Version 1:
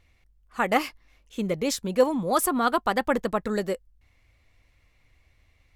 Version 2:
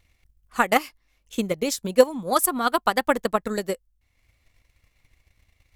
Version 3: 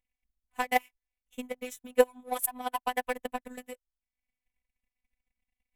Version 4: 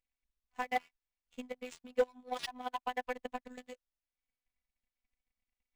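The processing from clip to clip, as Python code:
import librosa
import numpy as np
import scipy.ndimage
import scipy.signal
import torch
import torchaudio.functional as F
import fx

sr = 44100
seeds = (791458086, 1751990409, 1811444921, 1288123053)

y1 = fx.transient(x, sr, attack_db=9, sustain_db=-5)
y1 = fx.high_shelf(y1, sr, hz=5100.0, db=9.5)
y1 = F.gain(torch.from_numpy(y1), -3.0).numpy()
y2 = fx.fixed_phaser(y1, sr, hz=1300.0, stages=6)
y2 = fx.power_curve(y2, sr, exponent=1.4)
y2 = fx.robotise(y2, sr, hz=250.0)
y3 = np.clip(y2, -10.0 ** (-15.5 / 20.0), 10.0 ** (-15.5 / 20.0))
y3 = np.interp(np.arange(len(y3)), np.arange(len(y3))[::3], y3[::3])
y3 = F.gain(torch.from_numpy(y3), -5.5).numpy()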